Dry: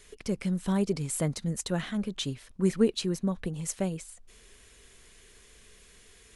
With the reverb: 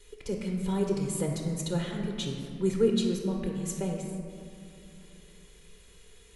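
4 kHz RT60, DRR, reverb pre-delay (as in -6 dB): 1.2 s, 1.0 dB, 3 ms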